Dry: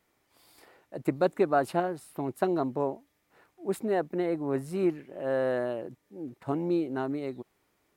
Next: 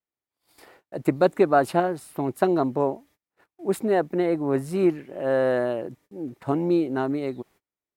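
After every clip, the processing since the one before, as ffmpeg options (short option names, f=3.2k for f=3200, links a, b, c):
-af "agate=range=-30dB:threshold=-58dB:ratio=16:detection=peak,volume=6dB"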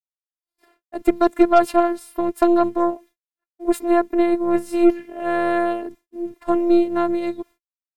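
-af "afftfilt=real='hypot(re,im)*cos(PI*b)':imag='0':win_size=512:overlap=0.75,agate=range=-33dB:threshold=-45dB:ratio=3:detection=peak,aeval=exprs='0.376*(cos(1*acos(clip(val(0)/0.376,-1,1)))-cos(1*PI/2))+0.0237*(cos(6*acos(clip(val(0)/0.376,-1,1)))-cos(6*PI/2))':c=same,volume=6.5dB"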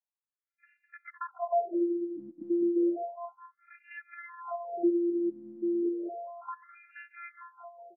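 -af "acompressor=threshold=-28dB:ratio=2.5,aecho=1:1:206|412|618|824|1030|1236|1442:0.422|0.236|0.132|0.0741|0.0415|0.0232|0.013,afftfilt=real='re*between(b*sr/1024,230*pow(2000/230,0.5+0.5*sin(2*PI*0.32*pts/sr))/1.41,230*pow(2000/230,0.5+0.5*sin(2*PI*0.32*pts/sr))*1.41)':imag='im*between(b*sr/1024,230*pow(2000/230,0.5+0.5*sin(2*PI*0.32*pts/sr))/1.41,230*pow(2000/230,0.5+0.5*sin(2*PI*0.32*pts/sr))*1.41)':win_size=1024:overlap=0.75"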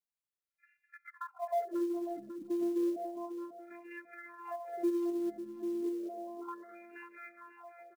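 -filter_complex "[0:a]aecho=1:1:544|1088|1632|2176:0.266|0.0905|0.0308|0.0105,asplit=2[a][b];[b]asoftclip=type=tanh:threshold=-29dB,volume=-10dB[c];[a][c]amix=inputs=2:normalize=0,acrusher=bits=7:mode=log:mix=0:aa=0.000001,volume=-6.5dB"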